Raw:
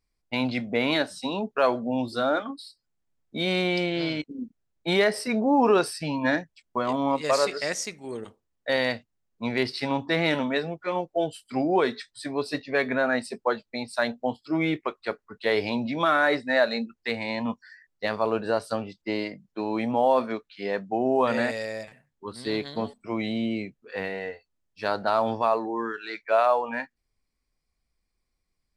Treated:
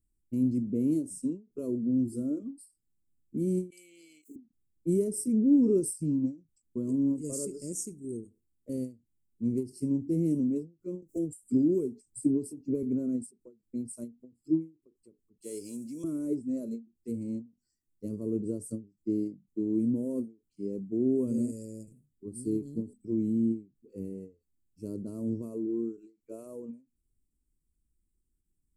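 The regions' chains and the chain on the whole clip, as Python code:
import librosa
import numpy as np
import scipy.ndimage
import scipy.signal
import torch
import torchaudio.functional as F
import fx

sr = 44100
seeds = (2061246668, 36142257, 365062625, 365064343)

y = fx.chain(x, sr, fx.highpass_res(hz=2300.0, q=3.0),
    fx.peak_eq(hz=5400.0, db=-14.0, octaves=0.27),
    fx.env_flatten(amount_pct=50), at=(3.7, 4.36))
y = fx.chain(y, sr, fx.dynamic_eq(hz=3400.0, q=0.86, threshold_db=-46.0, ratio=4.0, max_db=-5),
    fx.band_squash(depth_pct=100), at=(11.02, 12.83))
y = fx.chain(y, sr, fx.block_float(bits=7),
    fx.weighting(curve='ITU-R 468'), at=(15.42, 16.04))
y = scipy.signal.sosfilt(scipy.signal.ellip(3, 1.0, 40, [340.0, 7800.0], 'bandstop', fs=sr, output='sos'), y)
y = fx.dynamic_eq(y, sr, hz=9500.0, q=2.4, threshold_db=-58.0, ratio=4.0, max_db=3)
y = fx.end_taper(y, sr, db_per_s=210.0)
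y = y * 10.0 ** (2.0 / 20.0)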